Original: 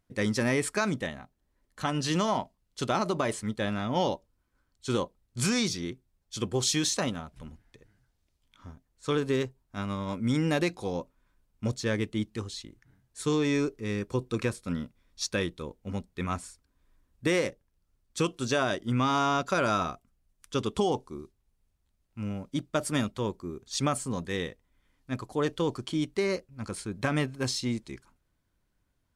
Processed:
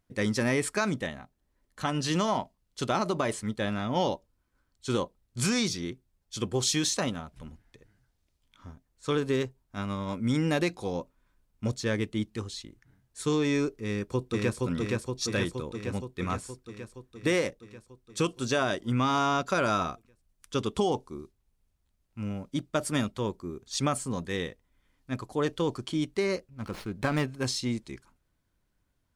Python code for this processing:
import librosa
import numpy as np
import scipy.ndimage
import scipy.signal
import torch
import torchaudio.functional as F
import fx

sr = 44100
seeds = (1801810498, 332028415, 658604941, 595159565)

y = fx.echo_throw(x, sr, start_s=13.86, length_s=0.71, ms=470, feedback_pct=70, wet_db=-1.5)
y = fx.running_max(y, sr, window=5, at=(26.5, 27.23))